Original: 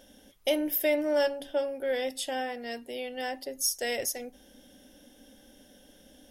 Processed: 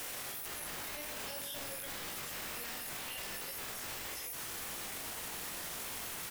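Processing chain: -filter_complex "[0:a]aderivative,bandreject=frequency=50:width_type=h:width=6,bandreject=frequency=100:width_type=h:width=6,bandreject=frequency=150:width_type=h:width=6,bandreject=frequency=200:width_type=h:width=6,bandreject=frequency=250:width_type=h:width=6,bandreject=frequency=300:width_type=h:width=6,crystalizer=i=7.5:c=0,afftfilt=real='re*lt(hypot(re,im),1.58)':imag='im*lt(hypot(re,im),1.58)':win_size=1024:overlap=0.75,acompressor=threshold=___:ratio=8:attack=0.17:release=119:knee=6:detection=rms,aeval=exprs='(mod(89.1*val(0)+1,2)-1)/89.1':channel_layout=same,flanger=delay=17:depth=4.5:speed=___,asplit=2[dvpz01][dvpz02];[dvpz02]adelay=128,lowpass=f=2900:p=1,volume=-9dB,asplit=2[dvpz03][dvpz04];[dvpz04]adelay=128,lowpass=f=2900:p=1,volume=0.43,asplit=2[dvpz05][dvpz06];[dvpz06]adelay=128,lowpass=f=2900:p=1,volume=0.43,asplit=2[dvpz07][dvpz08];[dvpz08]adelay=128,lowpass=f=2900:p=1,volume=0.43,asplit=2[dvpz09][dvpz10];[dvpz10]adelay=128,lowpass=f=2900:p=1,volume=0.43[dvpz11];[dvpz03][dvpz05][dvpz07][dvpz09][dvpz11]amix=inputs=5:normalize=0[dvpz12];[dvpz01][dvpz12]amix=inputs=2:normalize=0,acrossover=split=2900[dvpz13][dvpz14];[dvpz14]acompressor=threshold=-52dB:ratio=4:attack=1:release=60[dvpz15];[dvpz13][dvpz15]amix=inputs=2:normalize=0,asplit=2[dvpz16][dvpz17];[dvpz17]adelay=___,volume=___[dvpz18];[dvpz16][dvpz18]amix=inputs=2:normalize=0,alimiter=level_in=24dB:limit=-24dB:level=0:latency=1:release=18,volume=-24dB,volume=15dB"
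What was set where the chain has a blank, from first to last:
-29dB, 1.9, 44, -6.5dB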